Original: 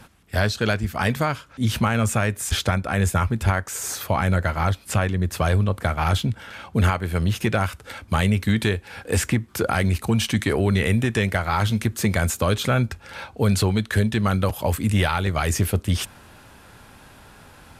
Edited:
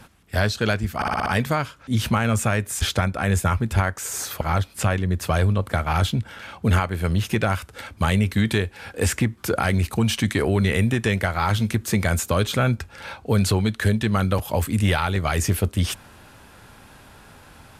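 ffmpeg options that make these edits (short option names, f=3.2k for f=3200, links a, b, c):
-filter_complex "[0:a]asplit=7[a][b][c][d][e][f][g];[a]atrim=end=1.022[h];[b]atrim=start=0.958:end=1.022[i];[c]atrim=start=0.958:end=1.022[j];[d]atrim=start=0.958:end=1.022[k];[e]atrim=start=0.958:end=1.022[l];[f]atrim=start=0.958:end=4.112[m];[g]atrim=start=4.518[n];[h][i]acrossfade=d=0.004:c1=hsin:c2=hsin[o];[o][j]acrossfade=d=0.004:c1=hsin:c2=hsin[p];[p][k]acrossfade=d=0.004:c1=hsin:c2=hsin[q];[q][l]acrossfade=d=0.004:c1=hsin:c2=hsin[r];[r][m]acrossfade=d=0.004:c1=hsin:c2=hsin[s];[s][n]acrossfade=d=0.004:c1=hsin:c2=hsin"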